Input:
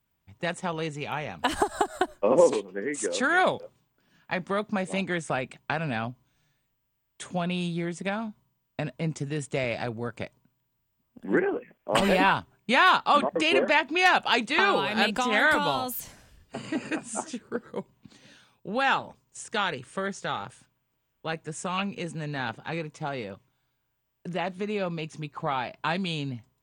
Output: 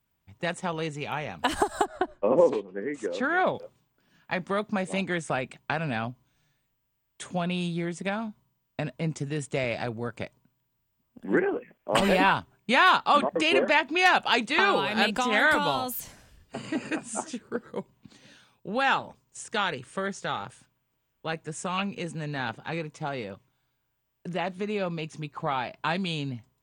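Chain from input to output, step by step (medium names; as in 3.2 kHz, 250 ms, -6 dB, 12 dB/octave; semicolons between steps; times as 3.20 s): 1.85–3.55 s: tape spacing loss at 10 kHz 22 dB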